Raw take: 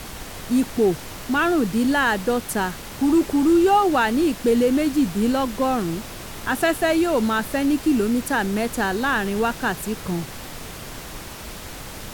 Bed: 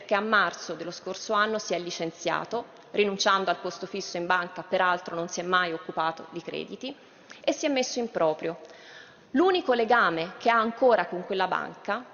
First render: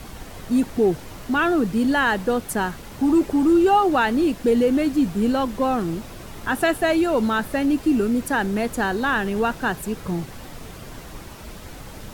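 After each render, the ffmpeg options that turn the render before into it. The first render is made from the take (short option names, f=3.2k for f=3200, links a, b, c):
-af "afftdn=nr=7:nf=-36"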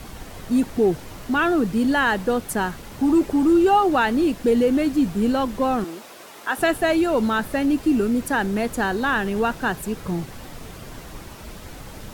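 -filter_complex "[0:a]asettb=1/sr,asplit=3[a][b][c];[a]atrim=end=5.844[d];[b]atrim=start=5.84:end=6.58,asetpts=PTS-STARTPTS,afade=t=in:d=0.004:c=qsin,afade=t=out:st=0.736:d=0.004:c=qsin,highpass=440[e];[c]atrim=start=6.576[f];[d][e]acrossfade=d=0.004:c1=hsin:c2=qsin[g];[g][f]acrossfade=d=0.004:c1=qsin:c2=hsin"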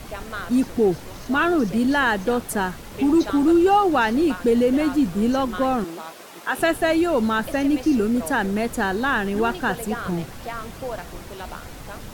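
-filter_complex "[1:a]volume=-10.5dB[a];[0:a][a]amix=inputs=2:normalize=0"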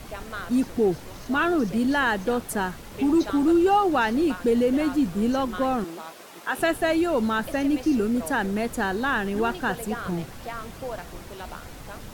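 -af "volume=-3dB"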